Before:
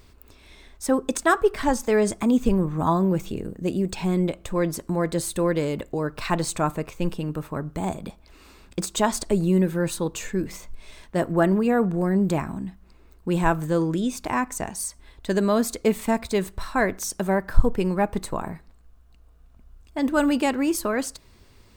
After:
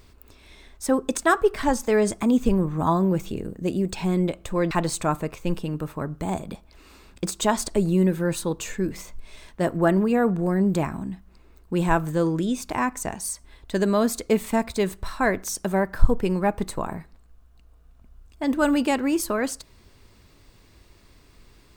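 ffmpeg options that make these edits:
ffmpeg -i in.wav -filter_complex "[0:a]asplit=2[link_01][link_02];[link_01]atrim=end=4.712[link_03];[link_02]atrim=start=6.258[link_04];[link_03][link_04]acrossfade=duration=0.004:curve1=hsin:curve2=hsin" out.wav

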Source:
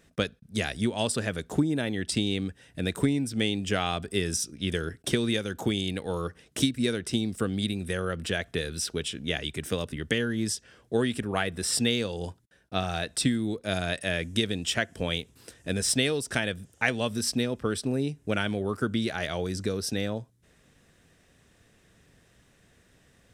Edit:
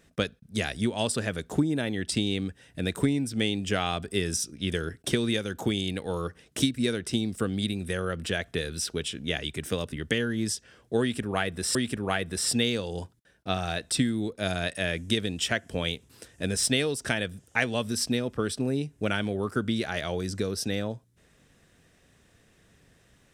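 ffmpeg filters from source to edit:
ffmpeg -i in.wav -filter_complex "[0:a]asplit=2[link_01][link_02];[link_01]atrim=end=11.752[link_03];[link_02]atrim=start=11.008[link_04];[link_03][link_04]acrossfade=duration=0.004:curve1=hsin:curve2=hsin" out.wav

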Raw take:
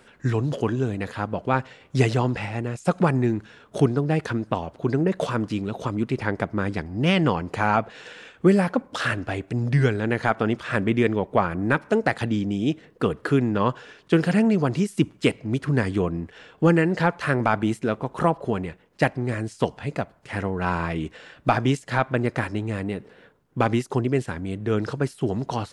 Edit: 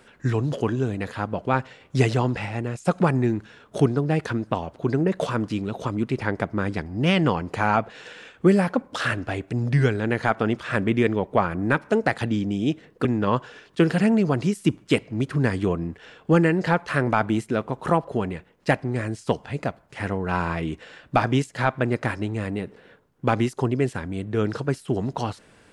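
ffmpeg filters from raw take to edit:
ffmpeg -i in.wav -filter_complex "[0:a]asplit=2[link_01][link_02];[link_01]atrim=end=13.052[link_03];[link_02]atrim=start=13.378[link_04];[link_03][link_04]acrossfade=duration=0.004:curve1=hsin:curve2=hsin" out.wav

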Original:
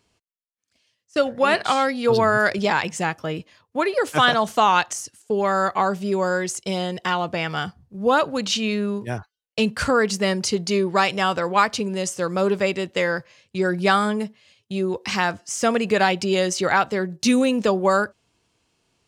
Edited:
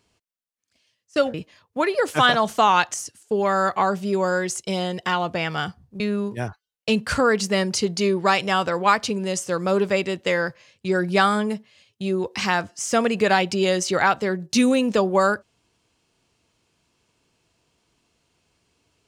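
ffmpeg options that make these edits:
ffmpeg -i in.wav -filter_complex "[0:a]asplit=3[link_01][link_02][link_03];[link_01]atrim=end=1.342[link_04];[link_02]atrim=start=3.328:end=7.992[link_05];[link_03]atrim=start=8.698[link_06];[link_04][link_05]acrossfade=duration=0.004:curve1=hsin:curve2=hsin[link_07];[link_07][link_06]acrossfade=duration=0.004:curve1=hsin:curve2=hsin" out.wav

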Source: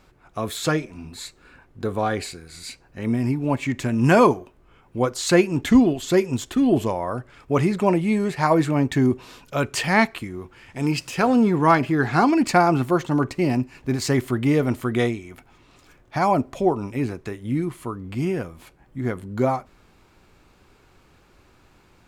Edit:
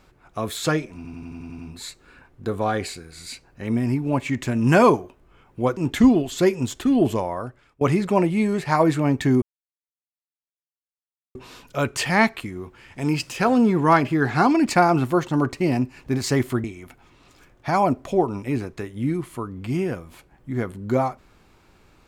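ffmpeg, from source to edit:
ffmpeg -i in.wav -filter_complex "[0:a]asplit=12[link_01][link_02][link_03][link_04][link_05][link_06][link_07][link_08][link_09][link_10][link_11][link_12];[link_01]atrim=end=1.052[link_13];[link_02]atrim=start=0.958:end=1.052[link_14];[link_03]atrim=start=0.958:end=1.052[link_15];[link_04]atrim=start=0.958:end=1.052[link_16];[link_05]atrim=start=0.958:end=1.052[link_17];[link_06]atrim=start=0.958:end=1.052[link_18];[link_07]atrim=start=0.958:end=1.052[link_19];[link_08]atrim=start=0.958:end=5.142[link_20];[link_09]atrim=start=5.478:end=7.52,asetpts=PTS-STARTPTS,afade=type=out:start_time=1.472:duration=0.57:silence=0.0630957[link_21];[link_10]atrim=start=7.52:end=9.13,asetpts=PTS-STARTPTS,afade=type=in:duration=0.004:curve=hsin:silence=0.0630957,afade=type=out:start_time=1.606:duration=0.004:curve=hsin,apad=pad_dur=1.93[link_22];[link_11]atrim=start=9.13:end=14.422,asetpts=PTS-STARTPTS,afade=type=in:duration=0.004:curve=hsin[link_23];[link_12]atrim=start=15.118[link_24];[link_13][link_14]acrossfade=duration=0.004:curve1=hsin:curve2=hsin[link_25];[link_25][link_15]acrossfade=duration=0.004:curve1=hsin:curve2=hsin[link_26];[link_26][link_16]acrossfade=duration=0.004:curve1=hsin:curve2=hsin[link_27];[link_27][link_17]acrossfade=duration=0.004:curve1=hsin:curve2=hsin[link_28];[link_28][link_18]acrossfade=duration=0.004:curve1=hsin:curve2=hsin[link_29];[link_29][link_19]acrossfade=duration=0.004:curve1=hsin:curve2=hsin[link_30];[link_30][link_20]acrossfade=duration=0.004:curve1=hsin:curve2=hsin[link_31];[link_21][link_22][link_23]concat=n=3:v=0:a=1[link_32];[link_31][link_32]acrossfade=duration=0.004:curve1=hsin:curve2=hsin[link_33];[link_33][link_24]acrossfade=duration=0.004:curve1=hsin:curve2=hsin" out.wav

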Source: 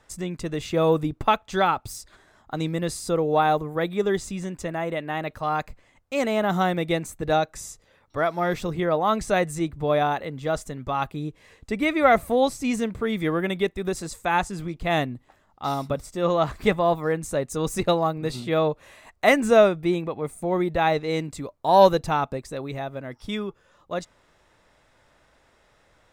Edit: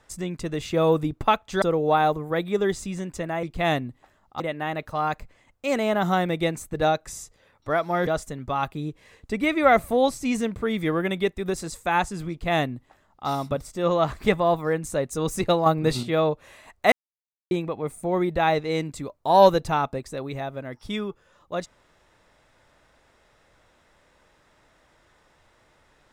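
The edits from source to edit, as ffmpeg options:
ffmpeg -i in.wav -filter_complex "[0:a]asplit=9[link_01][link_02][link_03][link_04][link_05][link_06][link_07][link_08][link_09];[link_01]atrim=end=1.622[link_10];[link_02]atrim=start=3.068:end=4.882[link_11];[link_03]atrim=start=14.688:end=15.662[link_12];[link_04]atrim=start=4.878:end=8.552[link_13];[link_05]atrim=start=10.458:end=18.052[link_14];[link_06]atrim=start=18.048:end=18.422,asetpts=PTS-STARTPTS,volume=5.5dB[link_15];[link_07]atrim=start=18.418:end=19.31,asetpts=PTS-STARTPTS,afade=type=out:start_time=0.888:duration=0.004:curve=hsin[link_16];[link_08]atrim=start=19.31:end=19.9,asetpts=PTS-STARTPTS,volume=0[link_17];[link_09]atrim=start=19.9,asetpts=PTS-STARTPTS,afade=type=in:duration=0.004:curve=hsin[link_18];[link_10][link_11]acrossfade=duration=0.004:curve1=hsin:curve2=hsin[link_19];[link_19][link_12]acrossfade=duration=0.004:curve1=hsin:curve2=hsin[link_20];[link_20][link_13]acrossfade=duration=0.004:curve1=hsin:curve2=hsin[link_21];[link_21][link_14]acrossfade=duration=0.004:curve1=hsin:curve2=hsin[link_22];[link_22][link_15]acrossfade=duration=0.004:curve1=hsin:curve2=hsin[link_23];[link_16][link_17][link_18]concat=n=3:v=0:a=1[link_24];[link_23][link_24]acrossfade=duration=0.004:curve1=hsin:curve2=hsin" out.wav

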